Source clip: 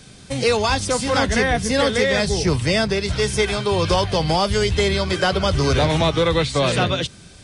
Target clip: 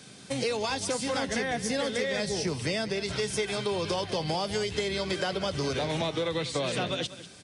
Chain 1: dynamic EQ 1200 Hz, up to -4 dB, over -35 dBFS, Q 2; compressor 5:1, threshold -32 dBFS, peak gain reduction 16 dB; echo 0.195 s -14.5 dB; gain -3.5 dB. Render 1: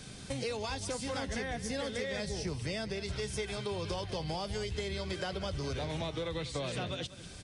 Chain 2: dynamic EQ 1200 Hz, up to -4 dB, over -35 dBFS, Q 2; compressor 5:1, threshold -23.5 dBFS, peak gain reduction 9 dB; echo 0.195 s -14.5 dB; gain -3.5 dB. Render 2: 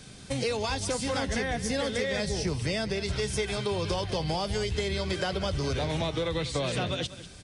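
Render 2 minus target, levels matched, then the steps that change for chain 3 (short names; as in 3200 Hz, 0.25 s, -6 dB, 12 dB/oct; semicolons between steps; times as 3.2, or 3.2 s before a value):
125 Hz band +4.5 dB
add after dynamic EQ: HPF 160 Hz 12 dB/oct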